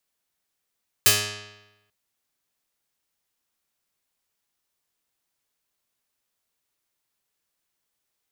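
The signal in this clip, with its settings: plucked string G#2, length 0.84 s, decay 1.01 s, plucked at 0.39, medium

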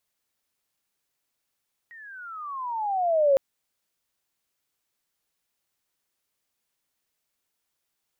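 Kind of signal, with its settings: gliding synth tone sine, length 1.46 s, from 1.9 kHz, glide -22 st, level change +28 dB, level -15 dB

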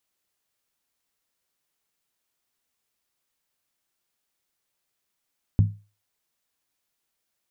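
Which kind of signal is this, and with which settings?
skin hit, lowest mode 103 Hz, decay 0.32 s, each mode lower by 8 dB, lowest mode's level -11 dB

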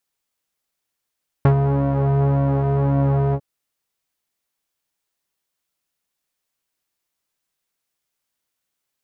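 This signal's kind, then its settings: synth patch with pulse-width modulation C#3, filter lowpass, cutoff 530 Hz, Q 1.1, filter envelope 1.5 oct, filter decay 0.07 s, attack 1.3 ms, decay 0.10 s, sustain -5.5 dB, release 0.06 s, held 1.89 s, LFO 1.8 Hz, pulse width 42%, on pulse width 9%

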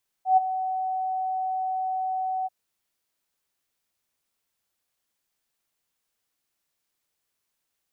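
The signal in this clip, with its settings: ADSR sine 752 Hz, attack 120 ms, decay 20 ms, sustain -12.5 dB, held 2.21 s, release 28 ms -12.5 dBFS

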